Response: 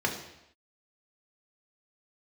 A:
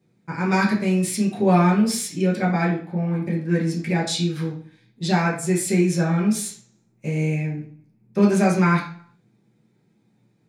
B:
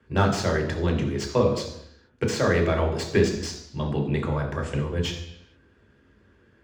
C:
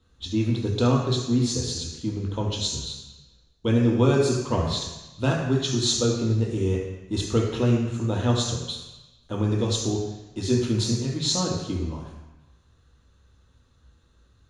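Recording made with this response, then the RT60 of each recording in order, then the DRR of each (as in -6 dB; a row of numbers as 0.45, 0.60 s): B; 0.50 s, not exponential, 1.1 s; -6.5, 0.0, -2.0 dB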